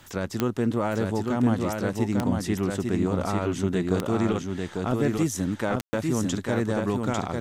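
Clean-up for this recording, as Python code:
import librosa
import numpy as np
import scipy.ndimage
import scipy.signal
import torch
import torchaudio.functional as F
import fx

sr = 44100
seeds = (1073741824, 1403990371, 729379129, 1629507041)

y = fx.fix_declick_ar(x, sr, threshold=10.0)
y = fx.fix_ambience(y, sr, seeds[0], print_start_s=0.0, print_end_s=0.5, start_s=5.81, end_s=5.93)
y = fx.fix_echo_inverse(y, sr, delay_ms=848, level_db=-3.5)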